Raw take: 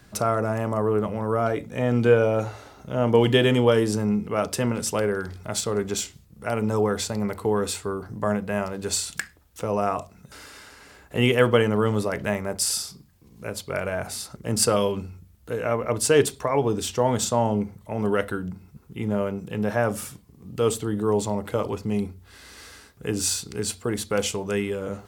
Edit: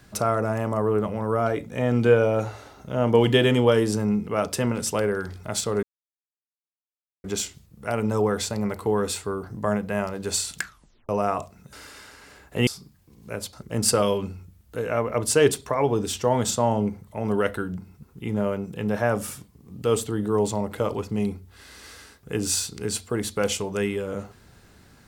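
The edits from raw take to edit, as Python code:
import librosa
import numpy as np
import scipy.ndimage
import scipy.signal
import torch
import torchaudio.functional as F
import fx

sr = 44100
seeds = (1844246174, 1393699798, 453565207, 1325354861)

y = fx.edit(x, sr, fx.insert_silence(at_s=5.83, length_s=1.41),
    fx.tape_stop(start_s=9.19, length_s=0.49),
    fx.cut(start_s=11.26, length_s=1.55),
    fx.cut(start_s=13.67, length_s=0.6), tone=tone)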